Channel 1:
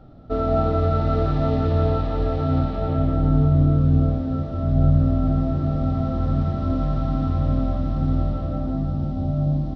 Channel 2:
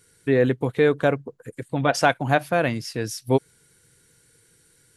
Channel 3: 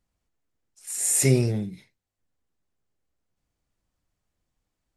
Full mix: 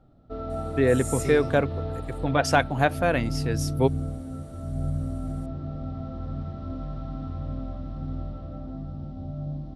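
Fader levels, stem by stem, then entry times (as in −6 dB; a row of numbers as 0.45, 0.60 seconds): −11.5, −2.0, −13.0 decibels; 0.00, 0.50, 0.00 seconds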